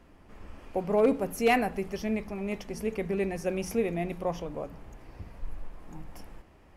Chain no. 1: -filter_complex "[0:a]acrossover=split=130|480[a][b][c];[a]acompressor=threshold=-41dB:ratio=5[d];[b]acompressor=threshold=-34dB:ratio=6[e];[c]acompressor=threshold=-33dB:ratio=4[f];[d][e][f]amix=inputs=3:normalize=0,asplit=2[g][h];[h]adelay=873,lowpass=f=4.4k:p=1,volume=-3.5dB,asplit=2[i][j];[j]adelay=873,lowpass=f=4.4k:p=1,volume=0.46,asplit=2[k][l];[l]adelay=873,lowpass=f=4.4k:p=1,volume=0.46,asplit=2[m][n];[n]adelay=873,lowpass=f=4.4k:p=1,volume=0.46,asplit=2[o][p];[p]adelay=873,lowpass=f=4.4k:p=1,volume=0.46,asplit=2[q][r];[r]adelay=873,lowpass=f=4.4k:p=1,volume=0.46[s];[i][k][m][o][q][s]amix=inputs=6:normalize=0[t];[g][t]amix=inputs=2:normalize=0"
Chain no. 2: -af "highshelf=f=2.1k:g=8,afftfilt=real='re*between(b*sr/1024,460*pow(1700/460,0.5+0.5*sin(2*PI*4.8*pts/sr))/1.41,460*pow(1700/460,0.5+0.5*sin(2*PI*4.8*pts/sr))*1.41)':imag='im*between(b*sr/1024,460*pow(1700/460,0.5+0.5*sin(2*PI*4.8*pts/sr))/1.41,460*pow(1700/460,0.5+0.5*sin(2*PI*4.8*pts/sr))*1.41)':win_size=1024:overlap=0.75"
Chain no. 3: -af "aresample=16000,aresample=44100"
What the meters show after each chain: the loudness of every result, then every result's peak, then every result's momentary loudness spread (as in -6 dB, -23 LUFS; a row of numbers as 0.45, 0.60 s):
-34.0, -36.0, -30.0 LUFS; -19.5, -15.0, -15.5 dBFS; 11, 14, 23 LU